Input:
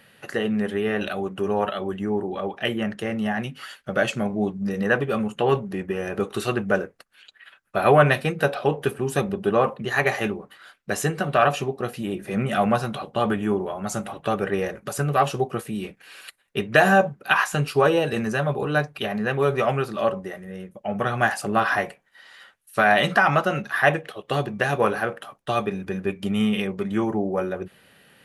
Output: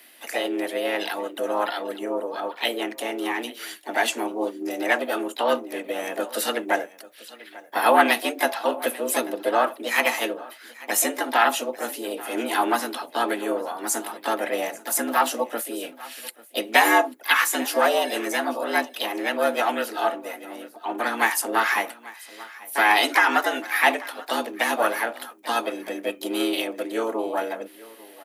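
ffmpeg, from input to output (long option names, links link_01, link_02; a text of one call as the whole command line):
ffmpeg -i in.wav -filter_complex "[0:a]afreqshift=110,aemphasis=mode=production:type=bsi,asplit=2[link_01][link_02];[link_02]aecho=0:1:841:0.1[link_03];[link_01][link_03]amix=inputs=2:normalize=0,asplit=2[link_04][link_05];[link_05]asetrate=55563,aresample=44100,atempo=0.793701,volume=-6dB[link_06];[link_04][link_06]amix=inputs=2:normalize=0,volume=-1.5dB" out.wav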